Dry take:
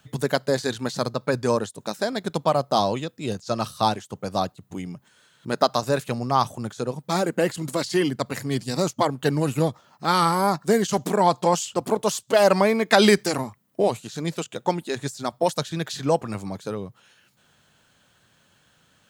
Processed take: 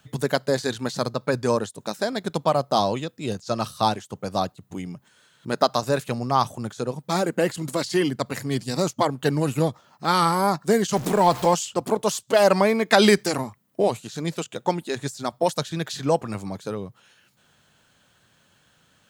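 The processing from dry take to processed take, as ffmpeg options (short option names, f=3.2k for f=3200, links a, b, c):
-filter_complex "[0:a]asettb=1/sr,asplit=3[a][b][c];[a]atrim=end=10.964[d];[b]atrim=start=10.96:end=11.54,asetpts=PTS-STARTPTS,afade=t=in:d=0.004:c=qsin,afade=t=out:st=0.576:d=0.004:c=qsin,aeval=exprs='val(0)+0.5*0.0335*sgn(val(0))':c=same[e];[c]atrim=start=11.536[f];[d][e]acrossfade=d=0.004:c1=hsin:c2=qsin[g];[g][f]acrossfade=d=0.004:c1=qsin:c2=hsin"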